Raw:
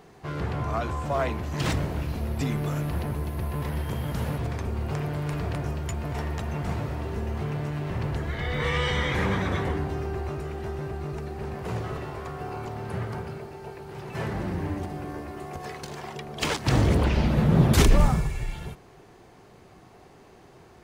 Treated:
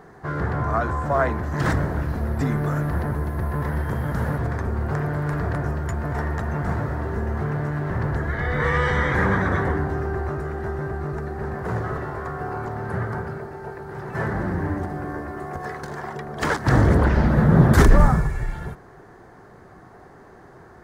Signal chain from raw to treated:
high shelf with overshoot 2,100 Hz −7 dB, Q 3
level +4.5 dB

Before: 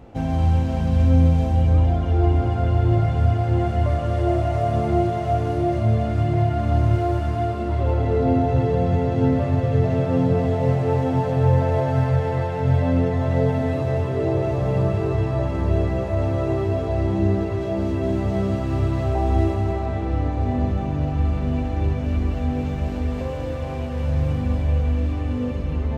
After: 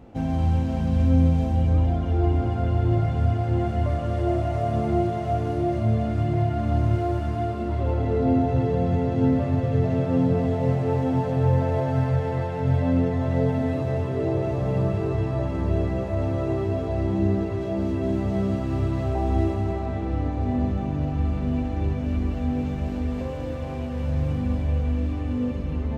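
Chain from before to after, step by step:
parametric band 230 Hz +4.5 dB 0.95 octaves
level −4 dB

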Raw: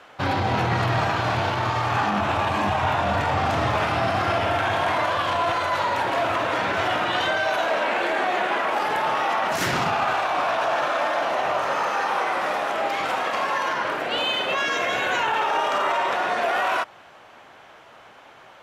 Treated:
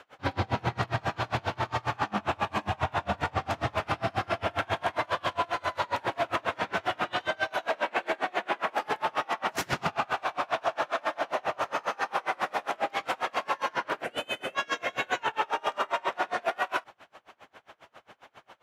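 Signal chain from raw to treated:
0:14.04–0:14.55: graphic EQ with 15 bands 1,000 Hz −8 dB, 4,000 Hz −11 dB, 10,000 Hz +9 dB
brickwall limiter −15.5 dBFS, peak gain reduction 4.5 dB
tremolo with a sine in dB 7.4 Hz, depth 31 dB

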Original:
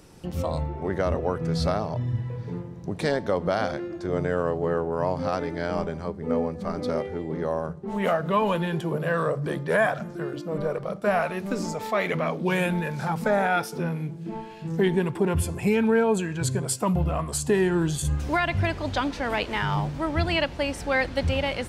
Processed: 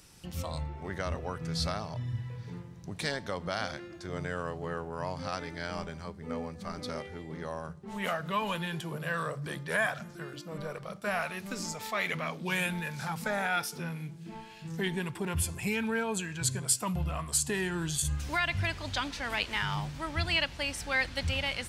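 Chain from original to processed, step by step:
guitar amp tone stack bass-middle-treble 5-5-5
level +7.5 dB

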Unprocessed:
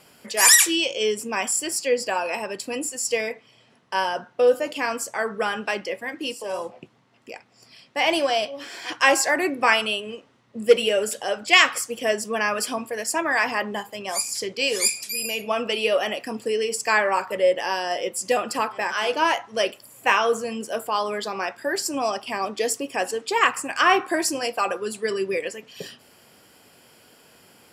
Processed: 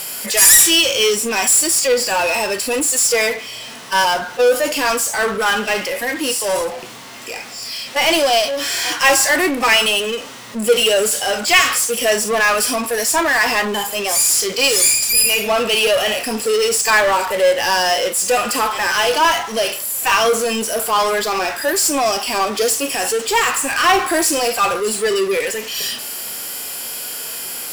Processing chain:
RIAA equalisation recording
harmonic and percussive parts rebalanced percussive −16 dB
power curve on the samples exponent 0.5
level −1.5 dB

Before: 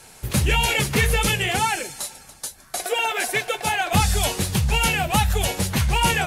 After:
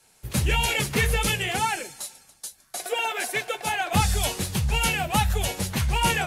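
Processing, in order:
multiband upward and downward expander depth 40%
level −3.5 dB

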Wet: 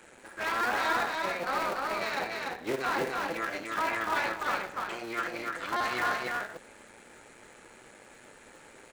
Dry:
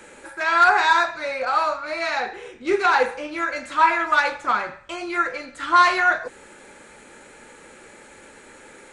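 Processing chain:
sub-harmonics by changed cycles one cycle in 3, muted
brickwall limiter −14 dBFS, peak gain reduction 9 dB
on a send: single-tap delay 293 ms −3 dB
on the sum: level −7 dB

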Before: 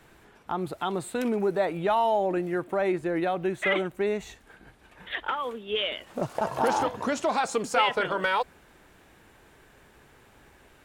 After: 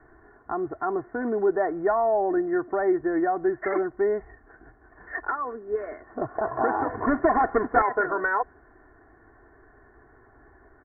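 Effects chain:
0:06.89–0:07.82: each half-wave held at its own peak
Butterworth low-pass 1,900 Hz 96 dB per octave
comb filter 2.8 ms, depth 72%

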